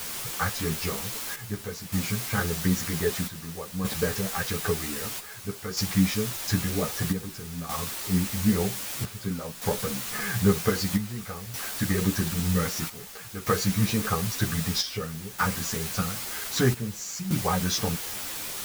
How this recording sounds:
a quantiser's noise floor 6 bits, dither triangular
chopped level 0.52 Hz, depth 65%, duty 70%
a shimmering, thickened sound

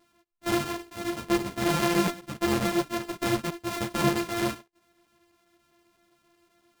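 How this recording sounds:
a buzz of ramps at a fixed pitch in blocks of 128 samples
chopped level 7.7 Hz, duty 90%
a shimmering, thickened sound

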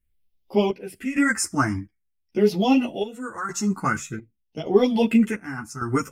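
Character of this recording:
phaser sweep stages 4, 0.48 Hz, lowest notch 520–1,500 Hz
chopped level 0.86 Hz, depth 65%, duty 60%
a shimmering, thickened sound

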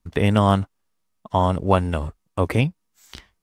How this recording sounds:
background noise floor −73 dBFS
spectral slope −6.5 dB per octave

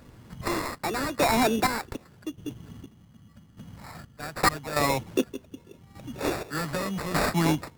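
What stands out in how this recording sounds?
chopped level 0.84 Hz, depth 65%, duty 40%
aliases and images of a low sample rate 3,100 Hz, jitter 0%
AAC

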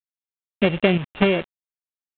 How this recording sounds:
a buzz of ramps at a fixed pitch in blocks of 16 samples
sample-and-hold tremolo 4.1 Hz, depth 75%
a quantiser's noise floor 6 bits, dither none
G.726

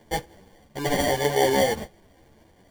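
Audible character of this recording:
aliases and images of a low sample rate 1,300 Hz, jitter 0%
a shimmering, thickened sound

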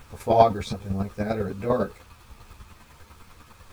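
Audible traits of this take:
chopped level 10 Hz, depth 60%, duty 15%
a quantiser's noise floor 10 bits, dither none
a shimmering, thickened sound

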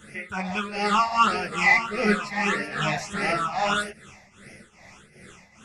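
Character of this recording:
phaser sweep stages 8, 1.6 Hz, lowest notch 400–1,100 Hz
tremolo triangle 2.5 Hz, depth 80%
a shimmering, thickened sound

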